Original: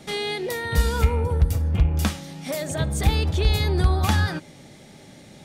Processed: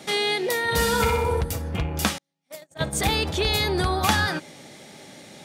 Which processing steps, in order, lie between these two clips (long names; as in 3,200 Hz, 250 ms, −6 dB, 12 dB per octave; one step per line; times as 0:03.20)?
0:02.18–0:02.93: noise gate −24 dBFS, range −45 dB
high-pass filter 370 Hz 6 dB per octave
0:00.62–0:01.41: flutter between parallel walls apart 10.7 metres, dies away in 0.78 s
level +5 dB